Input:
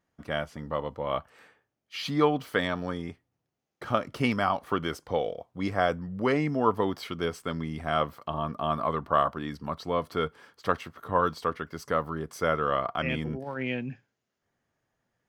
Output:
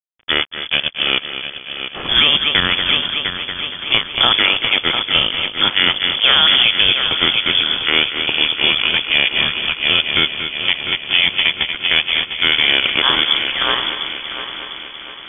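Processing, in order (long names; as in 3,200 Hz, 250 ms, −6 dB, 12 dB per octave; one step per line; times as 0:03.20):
compressing power law on the bin magnitudes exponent 0.55
in parallel at −10 dB: sample-and-hold swept by an LFO 42×, swing 100% 0.44 Hz
on the sum: frequency shifter −160 Hz
dead-zone distortion −36.5 dBFS
echo machine with several playback heads 233 ms, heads first and third, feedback 62%, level −12 dB
voice inversion scrambler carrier 3,400 Hz
boost into a limiter +16.5 dB
level −1 dB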